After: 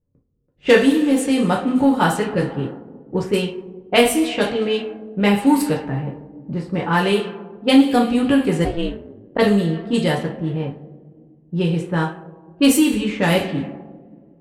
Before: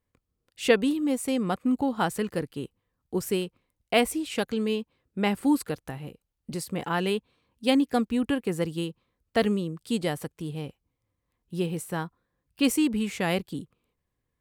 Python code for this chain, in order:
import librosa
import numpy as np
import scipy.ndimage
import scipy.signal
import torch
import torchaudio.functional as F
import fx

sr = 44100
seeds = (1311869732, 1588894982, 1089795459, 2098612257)

p1 = fx.rev_double_slope(x, sr, seeds[0], early_s=0.35, late_s=2.7, knee_db=-18, drr_db=-2.0)
p2 = fx.ring_mod(p1, sr, carrier_hz=fx.line((8.64, 240.0), (9.37, 39.0)), at=(8.64, 9.37), fade=0.02)
p3 = 10.0 ** (-19.0 / 20.0) * np.tanh(p2 / 10.0 ** (-19.0 / 20.0))
p4 = p2 + (p3 * 10.0 ** (-6.5 / 20.0))
p5 = fx.env_lowpass(p4, sr, base_hz=380.0, full_db=-15.5)
y = p5 * 10.0 ** (3.0 / 20.0)